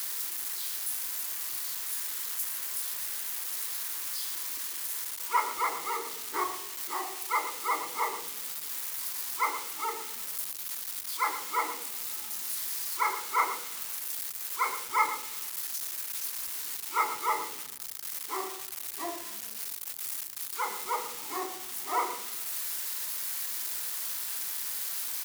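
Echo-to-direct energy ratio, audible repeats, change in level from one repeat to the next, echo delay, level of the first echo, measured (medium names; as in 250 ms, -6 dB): -12.5 dB, 1, no regular repeats, 117 ms, -12.5 dB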